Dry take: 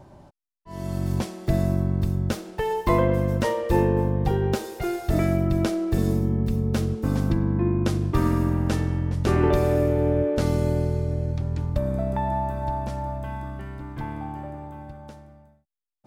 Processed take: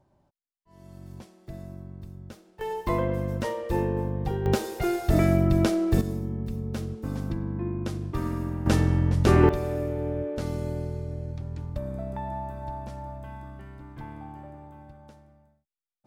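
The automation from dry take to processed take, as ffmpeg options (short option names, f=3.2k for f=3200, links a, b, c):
-af "asetnsamples=n=441:p=0,asendcmd='2.61 volume volume -6dB;4.46 volume volume 1dB;6.01 volume volume -8dB;8.66 volume volume 2.5dB;9.49 volume volume -8dB',volume=-18dB"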